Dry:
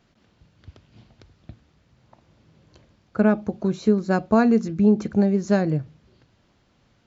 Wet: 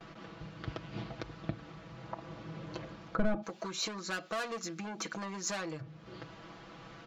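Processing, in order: overdrive pedal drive 24 dB, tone 4.3 kHz, clips at -5.5 dBFS; peaking EQ 1.2 kHz +4.5 dB 0.27 oct; comb 6.1 ms, depth 77%; compression 4:1, threshold -33 dBFS, peak gain reduction 21 dB; tilt EQ -2.5 dB/octave, from 3.42 s +3.5 dB/octave, from 5.80 s -2 dB/octave; gate with hold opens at -41 dBFS; trim -3.5 dB

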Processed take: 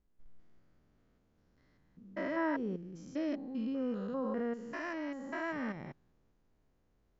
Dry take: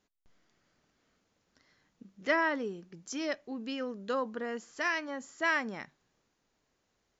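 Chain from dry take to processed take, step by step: spectrogram pixelated in time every 200 ms; tilt EQ -3.5 dB/octave; trim -2 dB

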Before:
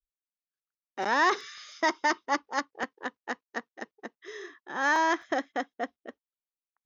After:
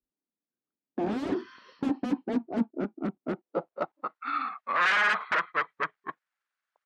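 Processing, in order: pitch bend over the whole clip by -10.5 st starting unshifted; sine folder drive 16 dB, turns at -14 dBFS; band-pass sweep 260 Hz -> 1.5 kHz, 3.23–4.24 s

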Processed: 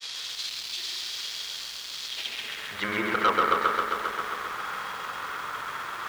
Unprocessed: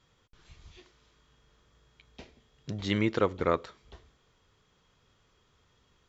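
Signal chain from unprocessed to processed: jump at every zero crossing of -35.5 dBFS; band-pass sweep 4.3 kHz -> 1.3 kHz, 2.00–2.95 s; granulator, pitch spread up and down by 0 st; in parallel at -7 dB: sine folder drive 9 dB, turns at -20.5 dBFS; on the sum: bit-crushed delay 133 ms, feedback 80%, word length 9-bit, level -4 dB; trim +6 dB

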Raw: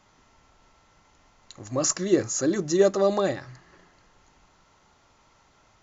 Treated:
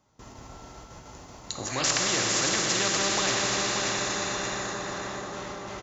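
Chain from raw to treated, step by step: high-pass 42 Hz 12 dB/octave; gate with hold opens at -50 dBFS; peaking EQ 2.2 kHz -9 dB 2.4 oct, from 1.68 s +3.5 dB; feedback delay 581 ms, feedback 36%, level -10.5 dB; plate-style reverb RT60 4.1 s, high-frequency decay 0.95×, DRR 1.5 dB; spectrum-flattening compressor 4:1; trim -5 dB

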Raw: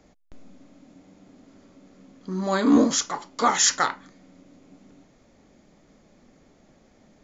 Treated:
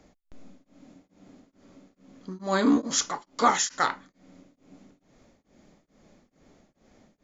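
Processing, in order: tremolo of two beating tones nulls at 2.3 Hz

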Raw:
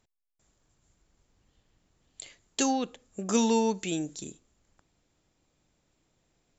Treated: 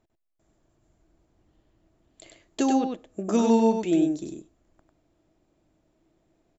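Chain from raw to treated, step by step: treble shelf 2.4 kHz -11 dB; small resonant body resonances 330/640 Hz, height 10 dB, ringing for 45 ms; on a send: delay 98 ms -4 dB; on the sum: trim +1.5 dB

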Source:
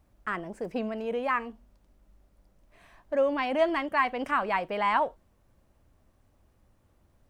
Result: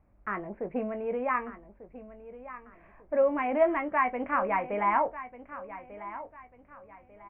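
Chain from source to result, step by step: elliptic low-pass 2.3 kHz, stop band 60 dB; peaking EQ 1.7 kHz -2.5 dB 0.77 oct; doubling 20 ms -9 dB; feedback delay 1194 ms, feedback 33%, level -14.5 dB

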